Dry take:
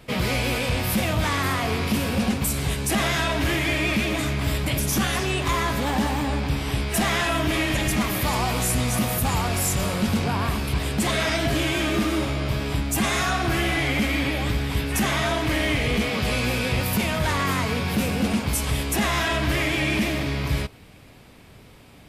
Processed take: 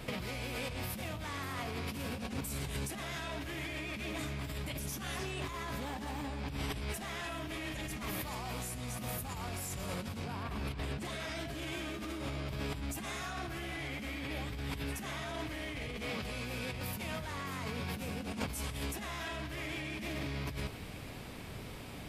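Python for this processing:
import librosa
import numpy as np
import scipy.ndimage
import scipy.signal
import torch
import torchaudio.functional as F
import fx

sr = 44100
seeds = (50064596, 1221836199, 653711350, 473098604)

y = fx.high_shelf(x, sr, hz=5500.0, db=-10.5, at=(10.43, 11.05))
y = fx.over_compress(y, sr, threshold_db=-33.0, ratio=-1.0)
y = fx.echo_feedback(y, sr, ms=123, feedback_pct=51, wet_db=-23.5)
y = y * librosa.db_to_amplitude(-6.5)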